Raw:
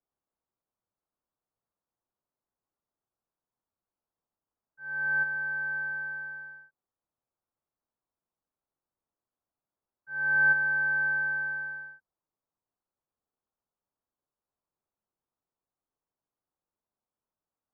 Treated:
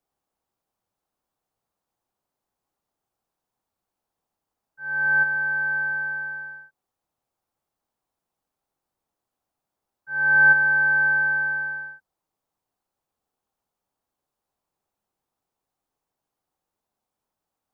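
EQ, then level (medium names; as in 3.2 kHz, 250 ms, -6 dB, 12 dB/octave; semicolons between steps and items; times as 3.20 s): peaking EQ 790 Hz +5 dB 0.26 oct; +7.5 dB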